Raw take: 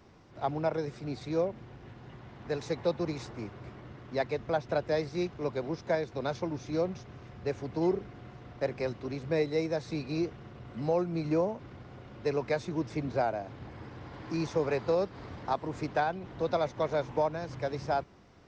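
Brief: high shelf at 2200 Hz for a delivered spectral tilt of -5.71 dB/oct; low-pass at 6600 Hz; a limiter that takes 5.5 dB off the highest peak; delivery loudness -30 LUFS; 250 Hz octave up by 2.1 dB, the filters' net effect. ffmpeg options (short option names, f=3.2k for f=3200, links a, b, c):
-af "lowpass=6.6k,equalizer=f=250:t=o:g=3.5,highshelf=f=2.2k:g=-7,volume=4dB,alimiter=limit=-18dB:level=0:latency=1"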